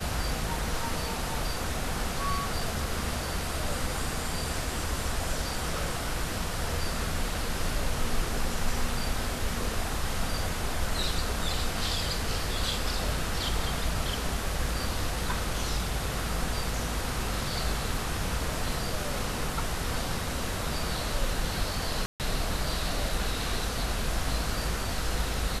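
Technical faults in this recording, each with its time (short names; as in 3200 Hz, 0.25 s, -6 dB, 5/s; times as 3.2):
22.06–22.2 gap 0.138 s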